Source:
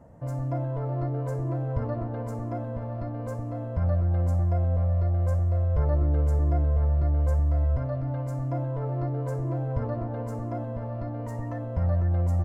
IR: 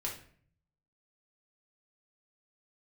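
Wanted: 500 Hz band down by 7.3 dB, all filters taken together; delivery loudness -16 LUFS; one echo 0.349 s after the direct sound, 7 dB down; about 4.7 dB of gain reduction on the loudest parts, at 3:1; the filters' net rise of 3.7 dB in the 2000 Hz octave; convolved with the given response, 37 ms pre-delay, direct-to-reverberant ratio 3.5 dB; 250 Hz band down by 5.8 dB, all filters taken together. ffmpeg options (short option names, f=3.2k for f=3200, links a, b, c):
-filter_complex "[0:a]equalizer=f=250:t=o:g=-8,equalizer=f=500:t=o:g=-8,equalizer=f=2k:t=o:g=5.5,acompressor=threshold=-27dB:ratio=3,aecho=1:1:349:0.447,asplit=2[a][b];[1:a]atrim=start_sample=2205,adelay=37[c];[b][c]afir=irnorm=-1:irlink=0,volume=-5dB[d];[a][d]amix=inputs=2:normalize=0,volume=16.5dB"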